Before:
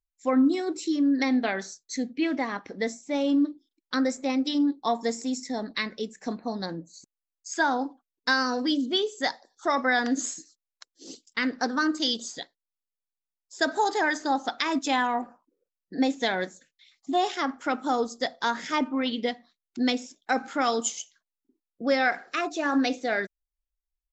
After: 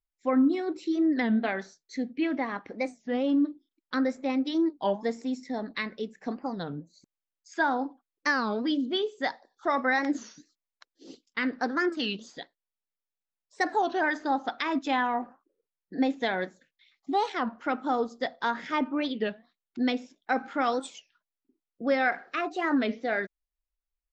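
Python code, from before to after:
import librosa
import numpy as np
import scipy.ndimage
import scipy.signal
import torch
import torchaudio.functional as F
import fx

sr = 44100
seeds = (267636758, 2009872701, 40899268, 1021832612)

y = scipy.signal.sosfilt(scipy.signal.butter(2, 3100.0, 'lowpass', fs=sr, output='sos'), x)
y = fx.record_warp(y, sr, rpm=33.33, depth_cents=250.0)
y = y * librosa.db_to_amplitude(-1.5)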